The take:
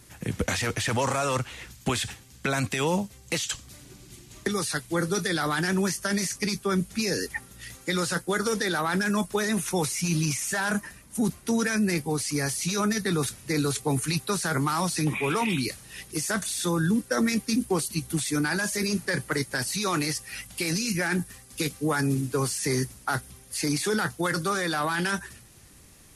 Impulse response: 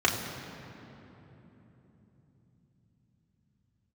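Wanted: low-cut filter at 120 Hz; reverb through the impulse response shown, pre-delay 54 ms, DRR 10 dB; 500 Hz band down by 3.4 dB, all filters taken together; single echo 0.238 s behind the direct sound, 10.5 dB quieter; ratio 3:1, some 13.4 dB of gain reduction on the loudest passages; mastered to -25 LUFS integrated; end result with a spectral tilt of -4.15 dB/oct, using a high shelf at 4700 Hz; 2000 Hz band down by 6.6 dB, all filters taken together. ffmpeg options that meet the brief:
-filter_complex "[0:a]highpass=120,equalizer=f=500:t=o:g=-4,equalizer=f=2k:t=o:g=-8,highshelf=f=4.7k:g=-4.5,acompressor=threshold=-41dB:ratio=3,aecho=1:1:238:0.299,asplit=2[a][b];[1:a]atrim=start_sample=2205,adelay=54[c];[b][c]afir=irnorm=-1:irlink=0,volume=-24dB[d];[a][d]amix=inputs=2:normalize=0,volume=15dB"

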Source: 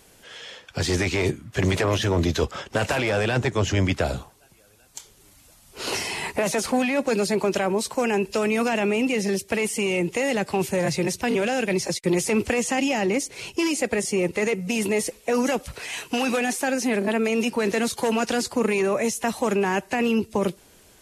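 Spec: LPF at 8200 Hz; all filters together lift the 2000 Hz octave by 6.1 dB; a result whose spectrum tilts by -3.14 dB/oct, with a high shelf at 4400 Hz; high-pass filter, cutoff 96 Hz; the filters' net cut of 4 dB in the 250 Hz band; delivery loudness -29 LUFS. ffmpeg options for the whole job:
-af "highpass=96,lowpass=8.2k,equalizer=f=250:t=o:g=-5,equalizer=f=2k:t=o:g=6.5,highshelf=f=4.4k:g=5,volume=-6dB"

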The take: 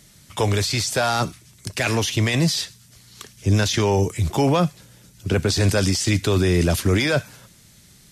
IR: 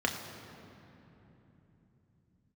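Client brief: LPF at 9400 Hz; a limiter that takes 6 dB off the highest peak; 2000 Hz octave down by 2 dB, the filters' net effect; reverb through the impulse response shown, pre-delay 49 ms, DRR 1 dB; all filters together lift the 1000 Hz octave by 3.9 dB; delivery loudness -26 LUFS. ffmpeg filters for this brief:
-filter_complex "[0:a]lowpass=9.4k,equalizer=f=1k:t=o:g=6.5,equalizer=f=2k:t=o:g=-5,alimiter=limit=-11.5dB:level=0:latency=1,asplit=2[a][b];[1:a]atrim=start_sample=2205,adelay=49[c];[b][c]afir=irnorm=-1:irlink=0,volume=-10dB[d];[a][d]amix=inputs=2:normalize=0,volume=-6.5dB"

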